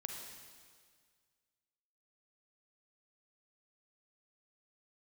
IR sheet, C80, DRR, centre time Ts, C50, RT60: 4.0 dB, 2.0 dB, 66 ms, 2.5 dB, 1.8 s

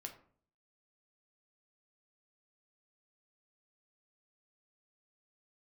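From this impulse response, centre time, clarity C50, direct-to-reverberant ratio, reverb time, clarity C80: 13 ms, 10.5 dB, 3.0 dB, 0.50 s, 14.5 dB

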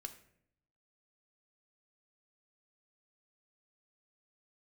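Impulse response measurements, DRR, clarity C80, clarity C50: 6.0 dB, 15.0 dB, 12.5 dB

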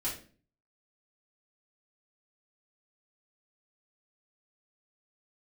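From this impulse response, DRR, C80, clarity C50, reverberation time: -8.0 dB, 12.0 dB, 6.5 dB, 0.40 s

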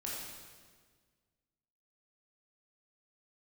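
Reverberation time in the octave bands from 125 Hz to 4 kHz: 2.1 s, 1.9 s, 1.7 s, 1.5 s, 1.4 s, 1.4 s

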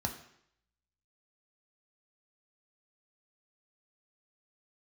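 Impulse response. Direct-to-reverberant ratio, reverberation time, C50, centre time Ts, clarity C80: 3.0 dB, 0.70 s, 10.0 dB, 16 ms, 12.5 dB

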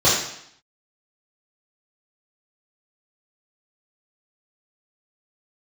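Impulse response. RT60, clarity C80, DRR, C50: 0.70 s, 5.5 dB, -9.0 dB, 2.0 dB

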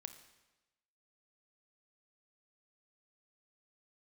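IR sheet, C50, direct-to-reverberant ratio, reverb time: 10.5 dB, 8.5 dB, 1.1 s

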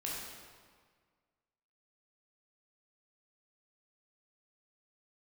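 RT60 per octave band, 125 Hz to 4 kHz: 1.8 s, 1.8 s, 1.7 s, 1.7 s, 1.5 s, 1.3 s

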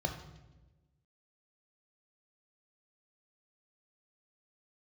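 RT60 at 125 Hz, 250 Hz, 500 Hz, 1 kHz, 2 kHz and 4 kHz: 1.5 s, 1.5 s, 1.3 s, 0.95 s, 0.90 s, 0.90 s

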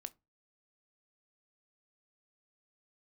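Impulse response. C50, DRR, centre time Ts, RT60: 25.0 dB, 12.0 dB, 2 ms, 0.25 s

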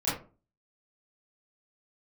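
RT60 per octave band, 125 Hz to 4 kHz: 0.45 s, 0.45 s, 0.40 s, 0.35 s, 0.25 s, 0.20 s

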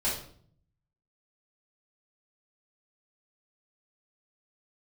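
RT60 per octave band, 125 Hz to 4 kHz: 1.1 s, 0.85 s, 0.60 s, 0.50 s, 0.45 s, 0.45 s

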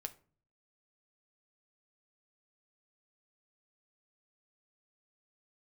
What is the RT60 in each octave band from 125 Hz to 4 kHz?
0.75 s, 0.60 s, 0.45 s, 0.40 s, 0.30 s, 0.25 s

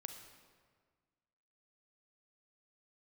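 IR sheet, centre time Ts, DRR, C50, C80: 31 ms, 6.0 dB, 6.5 dB, 8.0 dB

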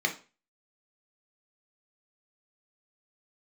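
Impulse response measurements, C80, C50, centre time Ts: 19.0 dB, 12.0 dB, 12 ms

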